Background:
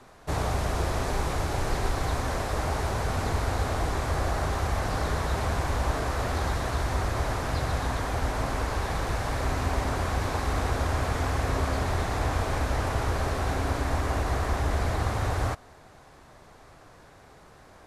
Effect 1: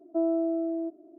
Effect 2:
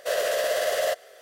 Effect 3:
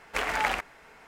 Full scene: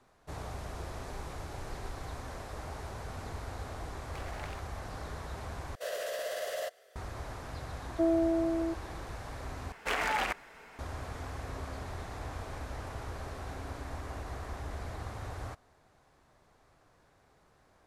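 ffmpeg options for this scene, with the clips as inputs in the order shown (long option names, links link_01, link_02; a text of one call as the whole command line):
ffmpeg -i bed.wav -i cue0.wav -i cue1.wav -i cue2.wav -filter_complex "[3:a]asplit=2[link_01][link_02];[0:a]volume=-13.5dB[link_03];[link_01]aeval=exprs='if(lt(val(0),0),0.251*val(0),val(0))':channel_layout=same[link_04];[link_02]alimiter=limit=-21dB:level=0:latency=1:release=25[link_05];[link_03]asplit=3[link_06][link_07][link_08];[link_06]atrim=end=5.754[link_09];[2:a]atrim=end=1.21,asetpts=PTS-STARTPTS,volume=-11.5dB[link_10];[link_07]atrim=start=6.956:end=9.724[link_11];[link_05]atrim=end=1.07[link_12];[link_08]atrim=start=10.786[link_13];[link_04]atrim=end=1.07,asetpts=PTS-STARTPTS,volume=-16.5dB,afade=type=in:duration=0.004:curve=hsin,afade=type=out:start_time=1.066:duration=0.004:curve=hsin,adelay=3990[link_14];[1:a]atrim=end=1.18,asetpts=PTS-STARTPTS,volume=-1dB,afade=type=in:duration=0.004:curve=hsin,afade=type=out:start_time=1.176:duration=0.004:curve=hsin,adelay=7840[link_15];[link_09][link_10]acrossfade=duration=0.004:curve1=hsin:curve2=hsin[link_16];[link_16][link_11]acrossfade=duration=0.004:curve1=hsin:curve2=hsin[link_17];[link_17][link_12]acrossfade=duration=0.004:curve1=hsin:curve2=hsin[link_18];[link_18][link_13]acrossfade=duration=0.004:curve1=hsin:curve2=hsin[link_19];[link_19][link_14][link_15]amix=inputs=3:normalize=0" out.wav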